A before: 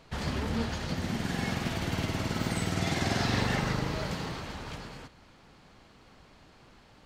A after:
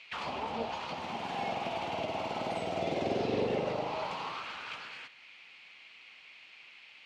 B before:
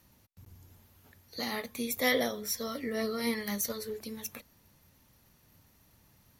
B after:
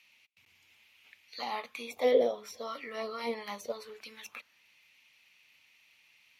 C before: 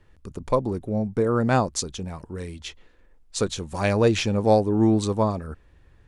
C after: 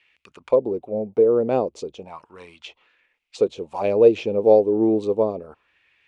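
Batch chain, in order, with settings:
high shelf with overshoot 2,100 Hz +6 dB, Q 3
envelope filter 460–2,200 Hz, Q 2.9, down, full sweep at −22.5 dBFS
level +8.5 dB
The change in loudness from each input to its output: −3.5, −1.0, +3.0 LU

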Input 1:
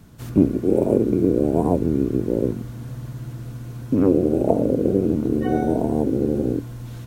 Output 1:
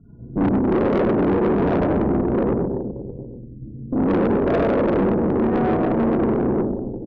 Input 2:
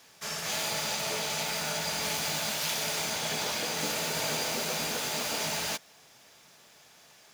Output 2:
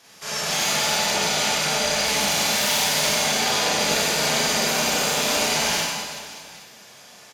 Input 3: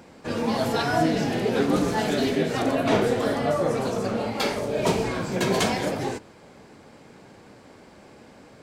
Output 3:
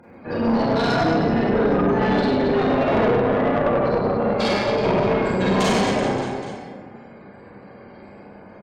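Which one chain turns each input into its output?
gate on every frequency bin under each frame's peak −20 dB strong
on a send: reverse bouncing-ball delay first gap 100 ms, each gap 1.25×, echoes 5
on the sum: four-comb reverb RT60 0.64 s, combs from 31 ms, DRR −5 dB
tube saturation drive 15 dB, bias 0.6
loudness normalisation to −20 LKFS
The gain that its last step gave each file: −0.5, +5.5, +1.5 decibels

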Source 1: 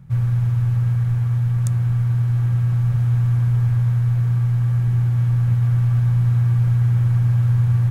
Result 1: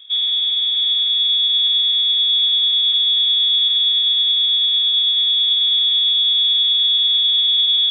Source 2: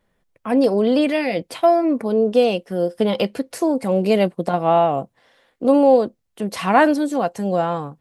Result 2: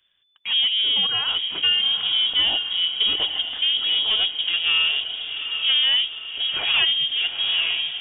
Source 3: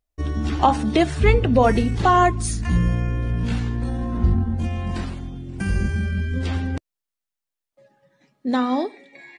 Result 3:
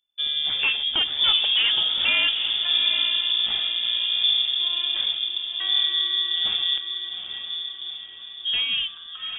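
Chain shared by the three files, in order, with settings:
dynamic equaliser 1,600 Hz, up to −4 dB, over −34 dBFS, Q 1.7
soft clipping −14.5 dBFS
on a send: feedback delay with all-pass diffusion 829 ms, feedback 51%, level −7.5 dB
on the sum: voice inversion scrambler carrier 3,500 Hz
normalise the peak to −9 dBFS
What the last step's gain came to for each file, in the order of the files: +0.5, −1.0, −2.0 decibels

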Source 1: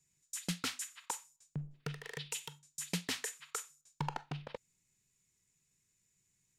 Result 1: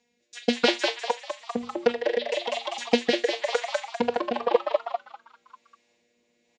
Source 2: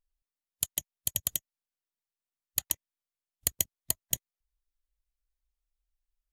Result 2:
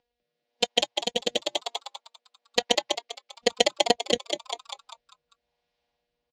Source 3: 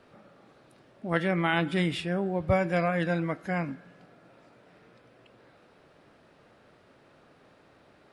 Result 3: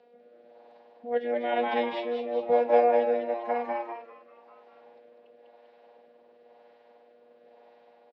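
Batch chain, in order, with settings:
parametric band 590 Hz +10 dB 1 octave
phases set to zero 240 Hz
loudspeaker in its box 120–4,500 Hz, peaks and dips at 250 Hz −4 dB, 470 Hz +5 dB, 810 Hz +5 dB, 1,200 Hz −9 dB
on a send: echo with shifted repeats 198 ms, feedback 47%, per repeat +110 Hz, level −3.5 dB
on the sum: rotating-speaker cabinet horn 1 Hz
loudness normalisation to −27 LKFS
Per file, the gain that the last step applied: +18.0, +19.0, −3.5 decibels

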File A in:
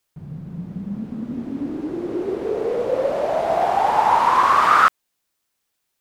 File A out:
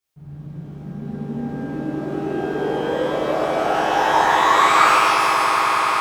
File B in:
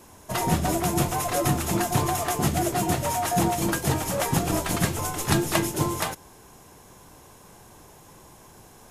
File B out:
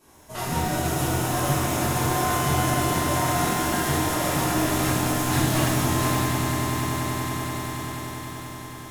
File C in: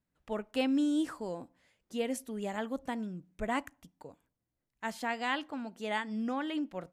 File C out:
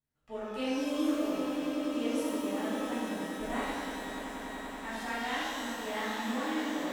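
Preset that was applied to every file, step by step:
echo that builds up and dies away 96 ms, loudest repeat 8, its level −13 dB
reverb with rising layers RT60 1.5 s, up +12 semitones, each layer −8 dB, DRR −10.5 dB
level −12 dB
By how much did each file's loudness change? +1.5, +1.0, +1.0 LU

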